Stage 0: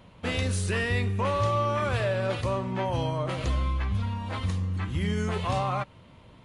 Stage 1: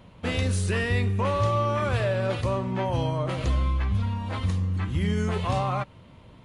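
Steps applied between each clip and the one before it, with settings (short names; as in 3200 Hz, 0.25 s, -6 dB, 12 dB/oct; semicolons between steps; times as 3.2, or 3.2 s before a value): low shelf 500 Hz +3 dB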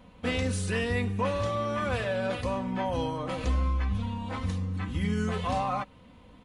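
comb 4 ms, depth 61%; gain -3.5 dB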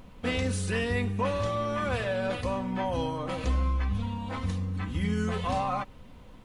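added noise brown -50 dBFS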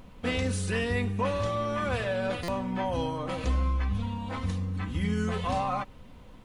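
stuck buffer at 2.43, samples 256, times 8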